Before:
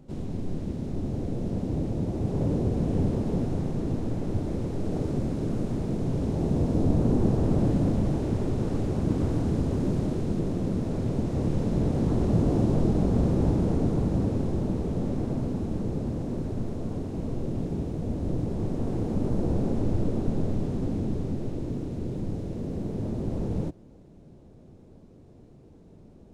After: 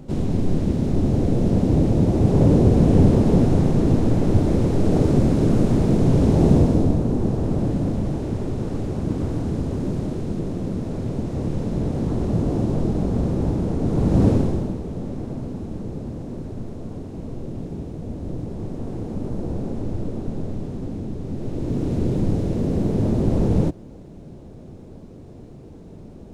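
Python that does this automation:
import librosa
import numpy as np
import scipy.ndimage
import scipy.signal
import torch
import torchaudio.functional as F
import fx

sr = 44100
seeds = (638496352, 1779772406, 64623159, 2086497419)

y = fx.gain(x, sr, db=fx.line((6.52, 11.0), (7.05, 1.5), (13.78, 1.5), (14.28, 11.0), (14.8, -1.0), (21.18, -1.0), (21.91, 10.5)))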